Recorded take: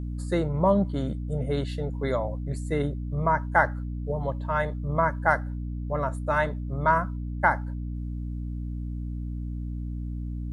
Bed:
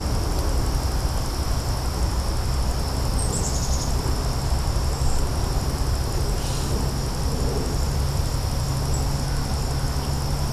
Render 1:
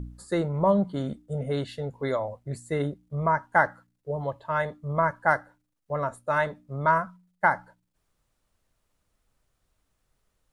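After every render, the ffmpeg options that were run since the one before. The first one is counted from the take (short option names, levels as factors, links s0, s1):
-af "bandreject=f=60:t=h:w=4,bandreject=f=120:t=h:w=4,bandreject=f=180:t=h:w=4,bandreject=f=240:t=h:w=4,bandreject=f=300:t=h:w=4"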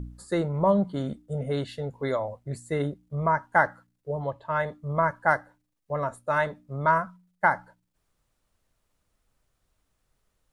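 -filter_complex "[0:a]asettb=1/sr,asplit=3[s0][s1][s2];[s0]atrim=end=4.194[s3];[s1]atrim=start=4.19:end=4.67,asetpts=PTS-STARTPTS,afade=t=in:d=0.004:c=qsin,afade=t=out:st=0.476:d=0.004:c=qsin,highshelf=f=6100:g=-7[s4];[s2]atrim=start=4.666[s5];[s3][s4]acrossfade=d=0.004:c1=hsin:c2=qsin[s6];[s6][s5]acrossfade=d=0.004:c1=qsin:c2=hsin,asettb=1/sr,asplit=3[s7][s8][s9];[s7]atrim=end=5.354[s10];[s8]atrim=start=5.35:end=6.07,asetpts=PTS-STARTPTS,afade=t=in:d=0.004:c=qsin,afade=t=out:st=0.716:d=0.004:c=qsin,bandreject=f=1400:w=12[s11];[s9]atrim=start=6.066[s12];[s10][s11]acrossfade=d=0.004:c1=hsin:c2=qsin[s13];[s13][s12]acrossfade=d=0.004:c1=qsin:c2=hsin"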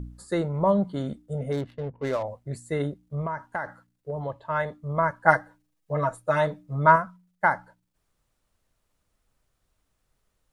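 -filter_complex "[0:a]asettb=1/sr,asplit=3[s0][s1][s2];[s0]atrim=end=1.524[s3];[s1]atrim=start=1.52:end=2.23,asetpts=PTS-STARTPTS,afade=t=in:d=0.004:c=qsin,afade=t=out:st=0.706:d=0.004:c=qsin,adynamicsmooth=sensitivity=7.5:basefreq=520[s4];[s2]atrim=start=2.226[s5];[s3][s4]acrossfade=d=0.004:c1=hsin:c2=qsin[s6];[s6][s5]acrossfade=d=0.004:c1=qsin:c2=hsin,asettb=1/sr,asplit=3[s7][s8][s9];[s7]atrim=end=3.214[s10];[s8]atrim=start=3.21:end=4.3,asetpts=PTS-STARTPTS,afade=t=in:d=0.004:c=qsin,afade=t=out:st=1.086:d=0.004:c=qsin,acompressor=threshold=0.0501:ratio=6:attack=3.2:release=140:knee=1:detection=peak[s11];[s9]atrim=start=4.296[s12];[s10][s11]acrossfade=d=0.004:c1=hsin:c2=qsin[s13];[s13][s12]acrossfade=d=0.004:c1=qsin:c2=hsin,asettb=1/sr,asplit=3[s14][s15][s16];[s14]atrim=end=5.254[s17];[s15]atrim=start=5.25:end=6.96,asetpts=PTS-STARTPTS,afade=t=in:d=0.004:c=qsin,afade=t=out:st=1.706:d=0.004:c=qsin,aecho=1:1:6.3:0.94,atrim=end_sample=75411[s18];[s16]atrim=start=6.956[s19];[s17][s18]acrossfade=d=0.004:c1=hsin:c2=qsin[s20];[s20][s19]acrossfade=d=0.004:c1=qsin:c2=hsin"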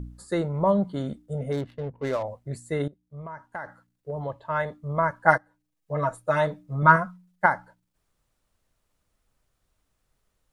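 -filter_complex "[0:a]asettb=1/sr,asplit=3[s0][s1][s2];[s0]atrim=end=6.824[s3];[s1]atrim=start=6.82:end=7.46,asetpts=PTS-STARTPTS,afade=t=in:d=0.004:c=qsin,afade=t=out:st=0.636:d=0.004:c=qsin,aecho=1:1:5.6:0.76,atrim=end_sample=28224[s4];[s2]atrim=start=7.456[s5];[s3][s4]acrossfade=d=0.004:c1=hsin:c2=qsin[s6];[s6][s5]acrossfade=d=0.004:c1=qsin:c2=hsin,asplit=3[s7][s8][s9];[s7]atrim=end=2.88,asetpts=PTS-STARTPTS,afade=t=out:st=2.876:d=0.004:c=hsin:silence=0.133352[s10];[s8]atrim=start=2.88:end=5.38,asetpts=PTS-STARTPTS,afade=t=in:d=1.33:silence=0.133352,afade=t=out:st=2.496:d=0.004:c=hsin:silence=0.158489[s11];[s9]atrim=start=5.38,asetpts=PTS-STARTPTS,afade=t=in:d=0.68:silence=0.158489[s12];[s10][s11][s12]concat=n=3:v=0:a=1"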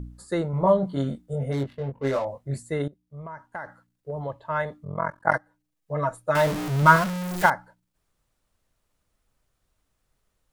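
-filter_complex "[0:a]asettb=1/sr,asplit=3[s0][s1][s2];[s0]atrim=end=0.514[s3];[s1]atrim=start=0.51:end=2.63,asetpts=PTS-STARTPTS,afade=t=in:d=0.004:c=qsin,afade=t=out:st=2.116:d=0.004:c=qsin,asplit=2[s4][s5];[s5]adelay=22,volume=0.75[s6];[s4][s6]amix=inputs=2:normalize=0,atrim=end_sample=93492[s7];[s2]atrim=start=2.626[s8];[s3][s7]acrossfade=d=0.004:c1=hsin:c2=qsin[s9];[s9][s8]acrossfade=d=0.004:c1=qsin:c2=hsin,asplit=3[s10][s11][s12];[s10]afade=t=out:st=4.83:d=0.02[s13];[s11]tremolo=f=44:d=0.974,afade=t=in:st=4.83:d=0.02,afade=t=out:st=5.33:d=0.02[s14];[s12]afade=t=in:st=5.33:d=0.02[s15];[s13][s14][s15]amix=inputs=3:normalize=0,asettb=1/sr,asplit=3[s16][s17][s18];[s16]atrim=end=6.354[s19];[s17]atrim=start=6.35:end=7.5,asetpts=PTS-STARTPTS,afade=t=in:d=0.004:c=qsin,afade=t=out:st=1.146:d=0.004:c=qsin,aeval=exprs='val(0)+0.5*0.0631*sgn(val(0))':c=same[s20];[s18]atrim=start=7.496[s21];[s19][s20]acrossfade=d=0.004:c1=hsin:c2=qsin[s22];[s22][s21]acrossfade=d=0.004:c1=qsin:c2=hsin"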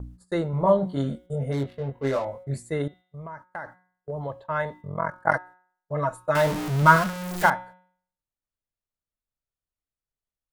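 -af "agate=range=0.0794:threshold=0.00631:ratio=16:detection=peak,bandreject=f=182.2:t=h:w=4,bandreject=f=364.4:t=h:w=4,bandreject=f=546.6:t=h:w=4,bandreject=f=728.8:t=h:w=4,bandreject=f=911:t=h:w=4,bandreject=f=1093.2:t=h:w=4,bandreject=f=1275.4:t=h:w=4,bandreject=f=1457.6:t=h:w=4,bandreject=f=1639.8:t=h:w=4,bandreject=f=1822:t=h:w=4,bandreject=f=2004.2:t=h:w=4,bandreject=f=2186.4:t=h:w=4,bandreject=f=2368.6:t=h:w=4,bandreject=f=2550.8:t=h:w=4,bandreject=f=2733:t=h:w=4,bandreject=f=2915.2:t=h:w=4,bandreject=f=3097.4:t=h:w=4,bandreject=f=3279.6:t=h:w=4,bandreject=f=3461.8:t=h:w=4,bandreject=f=3644:t=h:w=4,bandreject=f=3826.2:t=h:w=4,bandreject=f=4008.4:t=h:w=4"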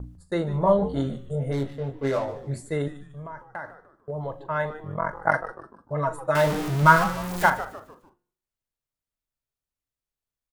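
-filter_complex "[0:a]asplit=2[s0][s1];[s1]adelay=40,volume=0.2[s2];[s0][s2]amix=inputs=2:normalize=0,asplit=5[s3][s4][s5][s6][s7];[s4]adelay=149,afreqshift=-140,volume=0.2[s8];[s5]adelay=298,afreqshift=-280,volume=0.0776[s9];[s6]adelay=447,afreqshift=-420,volume=0.0302[s10];[s7]adelay=596,afreqshift=-560,volume=0.0119[s11];[s3][s8][s9][s10][s11]amix=inputs=5:normalize=0"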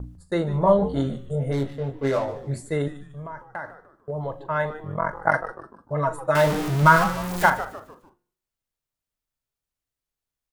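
-af "volume=1.26,alimiter=limit=0.708:level=0:latency=1"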